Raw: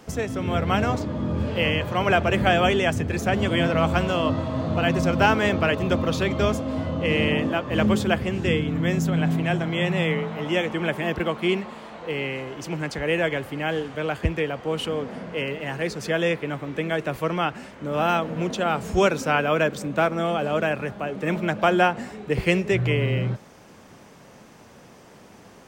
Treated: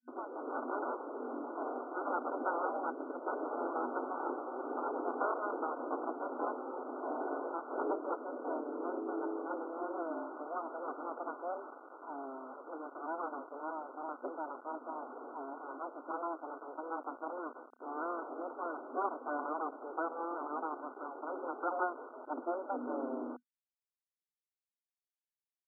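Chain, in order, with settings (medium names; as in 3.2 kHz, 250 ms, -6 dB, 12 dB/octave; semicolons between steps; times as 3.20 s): full-wave rectifier; bit crusher 6-bit; FFT band-pass 240–1500 Hz; trim -9 dB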